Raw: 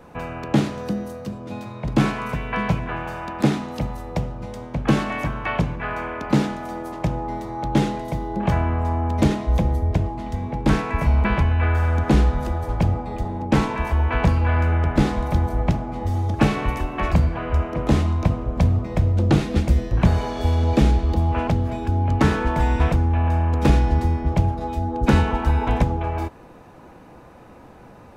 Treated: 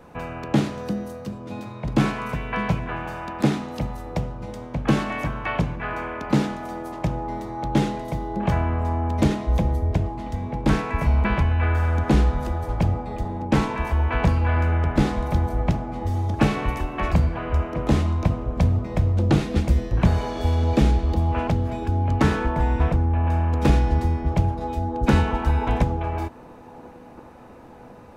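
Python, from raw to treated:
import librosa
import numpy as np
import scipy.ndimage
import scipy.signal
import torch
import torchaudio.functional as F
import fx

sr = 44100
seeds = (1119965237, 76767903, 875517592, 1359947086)

p1 = fx.high_shelf(x, sr, hz=2400.0, db=-9.0, at=(22.46, 23.27))
p2 = p1 + fx.echo_wet_bandpass(p1, sr, ms=1046, feedback_pct=71, hz=560.0, wet_db=-22.0, dry=0)
y = F.gain(torch.from_numpy(p2), -1.5).numpy()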